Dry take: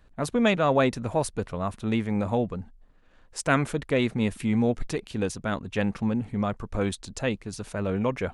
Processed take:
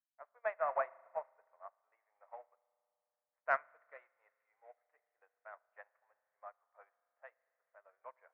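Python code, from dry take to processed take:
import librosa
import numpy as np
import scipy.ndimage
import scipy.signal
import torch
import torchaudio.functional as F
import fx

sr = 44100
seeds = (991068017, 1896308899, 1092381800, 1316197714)

y = fx.dead_time(x, sr, dead_ms=0.068)
y = scipy.signal.sosfilt(scipy.signal.ellip(3, 1.0, 50, [630.0, 2000.0], 'bandpass', fs=sr, output='sos'), y)
y = fx.cheby_harmonics(y, sr, harmonics=(4,), levels_db=(-37,), full_scale_db=-10.0)
y = fx.air_absorb(y, sr, metres=170.0, at=(0.43, 2.26))
y = fx.rev_spring(y, sr, rt60_s=3.0, pass_ms=(37,), chirp_ms=65, drr_db=7.5)
y = fx.upward_expand(y, sr, threshold_db=-43.0, expansion=2.5)
y = F.gain(torch.from_numpy(y), -6.0).numpy()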